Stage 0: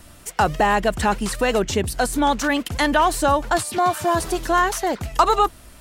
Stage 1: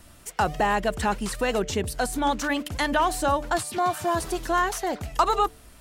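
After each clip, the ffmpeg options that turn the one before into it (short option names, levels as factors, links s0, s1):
-af "bandreject=f=147.9:t=h:w=4,bandreject=f=295.8:t=h:w=4,bandreject=f=443.7:t=h:w=4,bandreject=f=591.6:t=h:w=4,bandreject=f=739.5:t=h:w=4,volume=0.562"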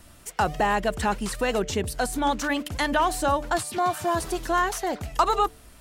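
-af anull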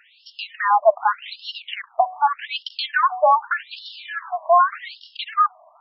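-af "asoftclip=type=hard:threshold=0.2,highpass=f=450:t=q:w=4.9,afftfilt=real='re*between(b*sr/1024,820*pow(4000/820,0.5+0.5*sin(2*PI*0.84*pts/sr))/1.41,820*pow(4000/820,0.5+0.5*sin(2*PI*0.84*pts/sr))*1.41)':imag='im*between(b*sr/1024,820*pow(4000/820,0.5+0.5*sin(2*PI*0.84*pts/sr))/1.41,820*pow(4000/820,0.5+0.5*sin(2*PI*0.84*pts/sr))*1.41)':win_size=1024:overlap=0.75,volume=2.51"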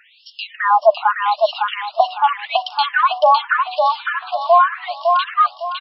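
-af "aecho=1:1:557|1114|1671|2228:0.631|0.202|0.0646|0.0207,volume=1.41"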